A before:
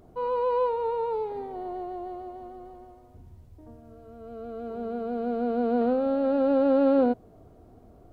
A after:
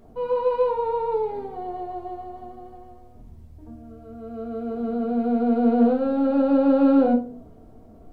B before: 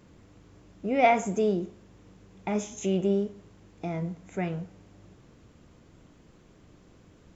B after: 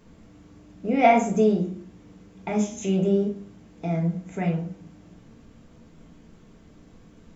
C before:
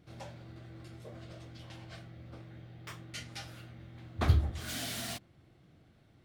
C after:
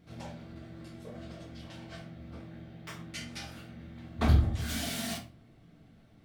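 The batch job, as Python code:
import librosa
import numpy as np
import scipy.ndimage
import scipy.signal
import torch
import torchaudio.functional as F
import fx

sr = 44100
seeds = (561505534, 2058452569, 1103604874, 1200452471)

y = fx.room_shoebox(x, sr, seeds[0], volume_m3=270.0, walls='furnished', distance_m=1.6)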